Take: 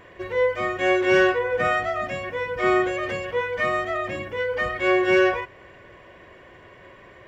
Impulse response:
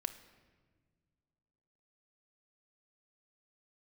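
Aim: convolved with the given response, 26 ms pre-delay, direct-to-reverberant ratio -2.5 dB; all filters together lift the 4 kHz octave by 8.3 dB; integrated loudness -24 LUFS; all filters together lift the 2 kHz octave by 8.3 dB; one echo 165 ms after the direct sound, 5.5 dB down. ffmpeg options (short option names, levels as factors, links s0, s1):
-filter_complex "[0:a]equalizer=f=2000:t=o:g=8,equalizer=f=4000:t=o:g=8,aecho=1:1:165:0.531,asplit=2[s0][s1];[1:a]atrim=start_sample=2205,adelay=26[s2];[s1][s2]afir=irnorm=-1:irlink=0,volume=1.5[s3];[s0][s3]amix=inputs=2:normalize=0,volume=0.282"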